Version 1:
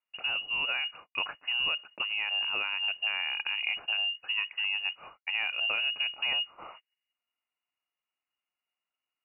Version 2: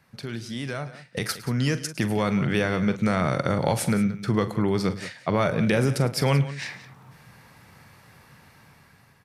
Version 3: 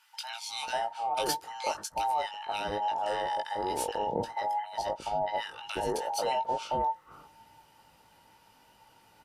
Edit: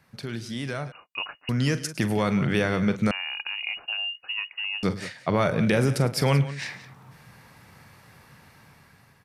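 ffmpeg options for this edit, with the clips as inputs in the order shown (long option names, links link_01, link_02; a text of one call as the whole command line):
ffmpeg -i take0.wav -i take1.wav -filter_complex "[0:a]asplit=2[link_01][link_02];[1:a]asplit=3[link_03][link_04][link_05];[link_03]atrim=end=0.922[link_06];[link_01]atrim=start=0.918:end=1.492[link_07];[link_04]atrim=start=1.488:end=3.112[link_08];[link_02]atrim=start=3.108:end=4.832[link_09];[link_05]atrim=start=4.828[link_10];[link_06][link_07]acrossfade=duration=0.004:curve1=hsin:curve2=hsin[link_11];[link_11][link_08]acrossfade=duration=0.004:curve1=hsin:curve2=hsin[link_12];[link_12][link_09]acrossfade=duration=0.004:curve1=hsin:curve2=hsin[link_13];[link_13][link_10]acrossfade=duration=0.004:curve1=hsin:curve2=hsin" out.wav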